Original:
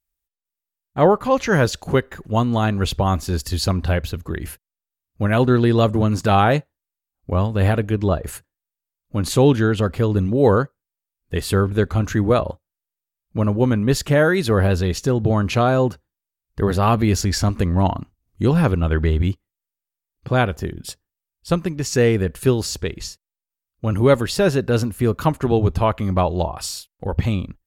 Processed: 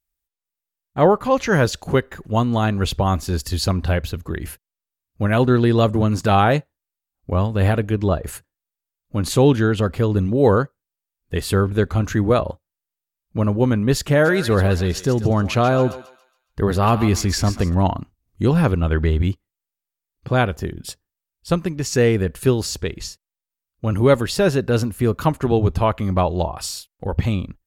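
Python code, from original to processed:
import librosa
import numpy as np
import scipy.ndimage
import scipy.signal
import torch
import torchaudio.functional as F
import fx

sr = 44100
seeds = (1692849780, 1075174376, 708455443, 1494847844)

y = fx.echo_thinned(x, sr, ms=139, feedback_pct=41, hz=940.0, wet_db=-10.0, at=(14.24, 17.73), fade=0.02)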